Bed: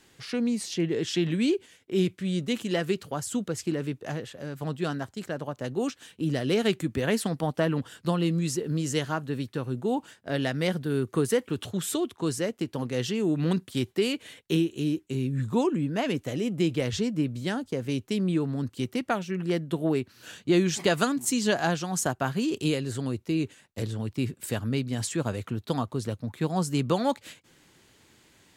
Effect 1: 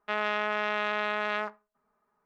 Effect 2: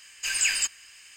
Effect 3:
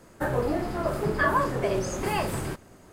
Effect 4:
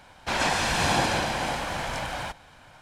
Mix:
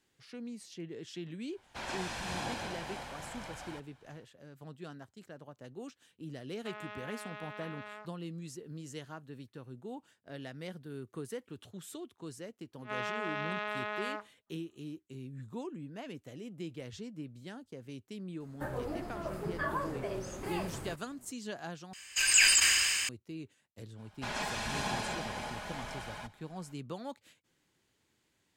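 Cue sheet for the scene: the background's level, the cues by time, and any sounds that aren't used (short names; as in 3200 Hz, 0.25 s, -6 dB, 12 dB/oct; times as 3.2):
bed -16.5 dB
1.48 add 4 -14.5 dB, fades 0.10 s
6.57 add 1 -16.5 dB
12.72 add 1 -7 dB + attack slew limiter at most 360 dB/s
18.4 add 3 -11.5 dB
21.93 replace with 2 + sustainer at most 22 dB/s
23.95 add 4 -12.5 dB, fades 0.05 s + comb 4.8 ms, depth 55%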